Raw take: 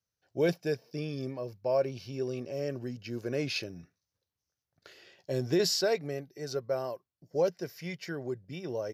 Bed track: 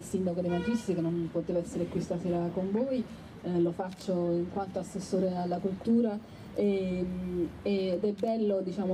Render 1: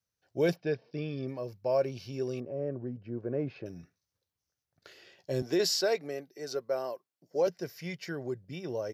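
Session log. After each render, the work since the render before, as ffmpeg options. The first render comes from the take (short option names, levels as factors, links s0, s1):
-filter_complex "[0:a]asplit=3[s0][s1][s2];[s0]afade=t=out:st=0.55:d=0.02[s3];[s1]lowpass=f=4100:w=0.5412,lowpass=f=4100:w=1.3066,afade=t=in:st=0.55:d=0.02,afade=t=out:st=1.27:d=0.02[s4];[s2]afade=t=in:st=1.27:d=0.02[s5];[s3][s4][s5]amix=inputs=3:normalize=0,asettb=1/sr,asplit=3[s6][s7][s8];[s6]atrim=end=2.404[s9];[s7]atrim=start=2.4:end=3.66,asetpts=PTS-STARTPTS,afade=t=in:d=0.004:c=qsin,afade=t=out:st=1.256:d=0.004:c=qsin,lowpass=1000[s10];[s8]atrim=start=3.656[s11];[s9][s10]acrossfade=d=0.004:c1=hsin:c2=qsin[s12];[s12][s11]acrossfade=d=0.004:c1=qsin:c2=hsin,asettb=1/sr,asplit=3[s13][s14][s15];[s13]atrim=end=5.424[s16];[s14]atrim=start=5.42:end=7.47,asetpts=PTS-STARTPTS,afade=t=in:d=0.004:c=qsin,afade=t=out:st=2.046:d=0.004:c=qsin,highpass=250[s17];[s15]atrim=start=7.466[s18];[s16][s17]acrossfade=d=0.004:c1=hsin:c2=qsin[s19];[s19][s18]acrossfade=d=0.004:c1=qsin:c2=hsin"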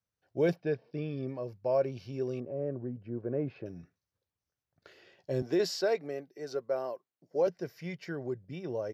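-af "highshelf=f=3400:g=-11"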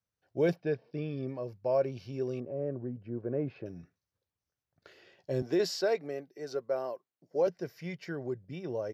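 -af anull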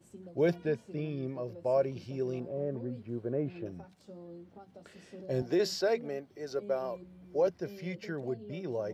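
-filter_complex "[1:a]volume=0.119[s0];[0:a][s0]amix=inputs=2:normalize=0"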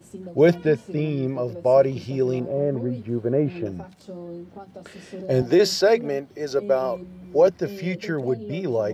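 -af "volume=3.76"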